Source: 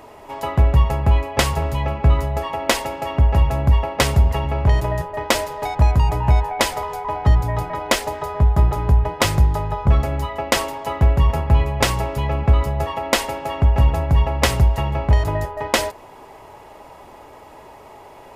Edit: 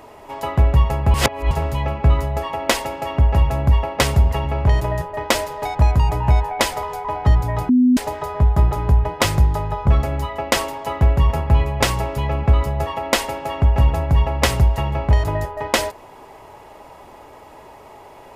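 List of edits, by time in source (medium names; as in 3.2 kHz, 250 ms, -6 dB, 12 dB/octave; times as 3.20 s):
1.14–1.51 s: reverse
7.69–7.97 s: bleep 250 Hz -10 dBFS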